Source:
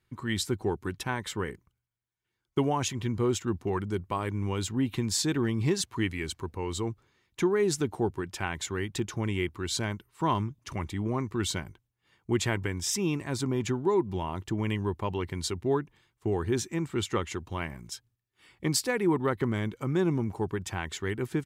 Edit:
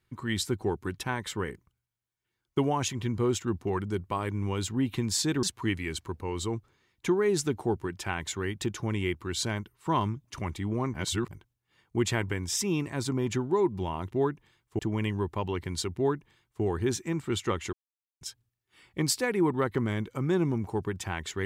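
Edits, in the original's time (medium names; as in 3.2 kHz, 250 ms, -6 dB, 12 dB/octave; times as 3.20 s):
5.43–5.77 s: delete
11.28–11.65 s: reverse
15.61–16.29 s: copy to 14.45 s
17.39–17.87 s: mute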